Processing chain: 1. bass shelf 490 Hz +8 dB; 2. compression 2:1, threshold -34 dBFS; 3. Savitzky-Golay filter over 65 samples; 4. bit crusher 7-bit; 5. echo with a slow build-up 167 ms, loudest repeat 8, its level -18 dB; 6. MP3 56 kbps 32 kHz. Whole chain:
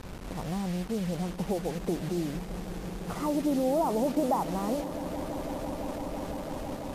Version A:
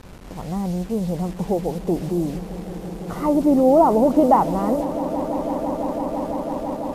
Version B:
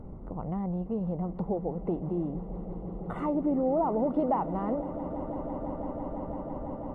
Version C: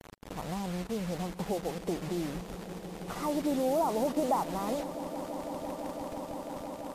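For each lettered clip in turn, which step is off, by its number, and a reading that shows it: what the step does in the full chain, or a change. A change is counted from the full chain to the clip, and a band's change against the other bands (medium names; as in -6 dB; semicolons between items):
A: 2, mean gain reduction 5.0 dB; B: 4, distortion -15 dB; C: 1, 125 Hz band -4.0 dB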